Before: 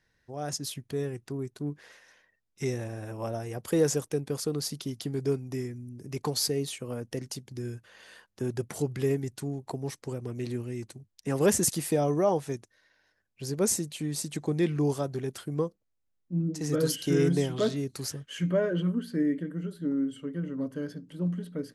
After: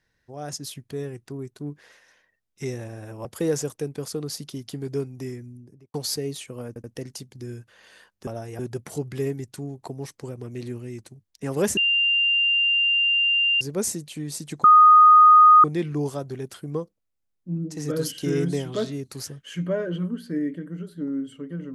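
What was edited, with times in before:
3.25–3.57 move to 8.43
5.78–6.26 studio fade out
7 stutter 0.08 s, 3 plays
11.61–13.45 bleep 2790 Hz -17.5 dBFS
14.48 add tone 1240 Hz -8.5 dBFS 1.00 s

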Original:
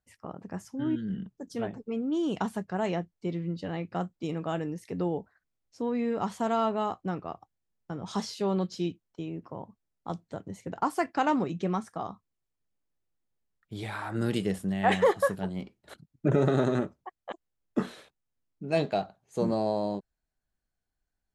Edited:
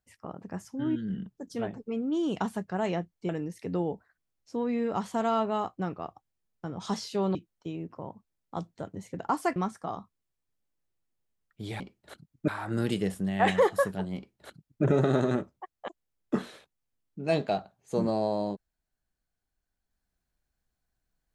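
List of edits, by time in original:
3.29–4.55 cut
8.61–8.88 cut
11.09–11.68 cut
15.6–16.28 copy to 13.92

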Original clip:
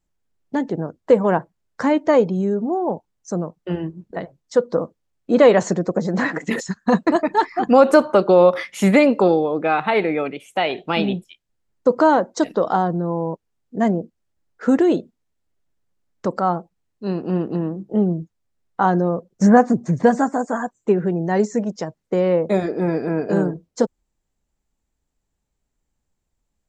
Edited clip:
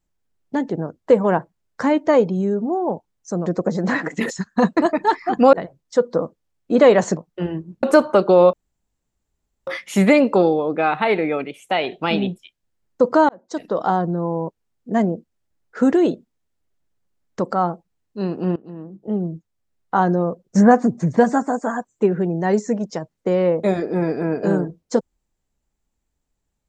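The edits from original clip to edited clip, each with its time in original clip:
3.46–4.12 swap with 5.76–7.83
8.53 insert room tone 1.14 s
12.15–12.78 fade in
17.42–19.03 fade in equal-power, from -21.5 dB

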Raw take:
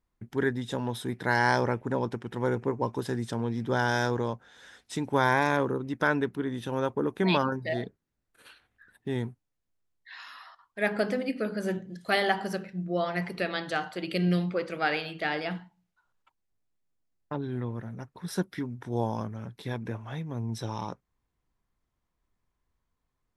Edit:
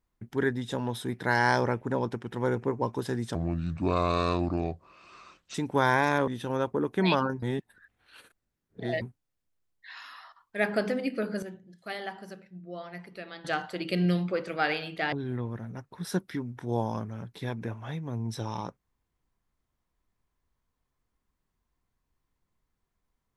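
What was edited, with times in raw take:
3.35–4.93 speed 72%
5.66–6.5 cut
7.65–9.24 reverse
11.65–13.67 gain -11.5 dB
15.35–17.36 cut

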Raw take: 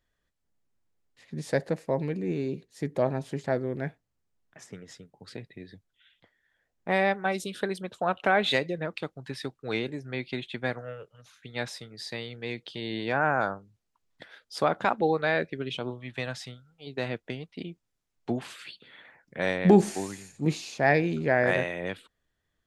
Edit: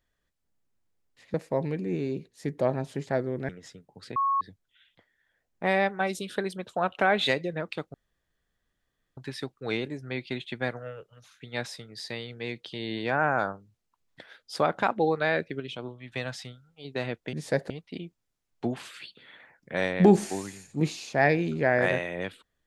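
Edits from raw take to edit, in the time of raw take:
1.34–1.71 move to 17.35
3.86–4.74 cut
5.41–5.66 bleep 1100 Hz -22 dBFS
9.19 insert room tone 1.23 s
15.62–16.14 gain -4 dB

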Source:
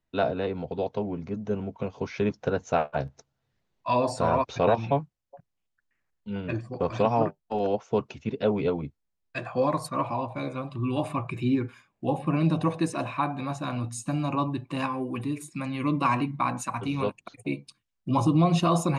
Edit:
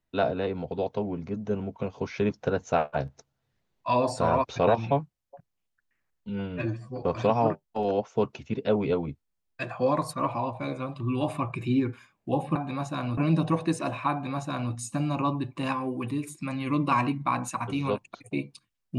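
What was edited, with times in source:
6.29–6.78 stretch 1.5×
13.25–13.87 copy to 12.31

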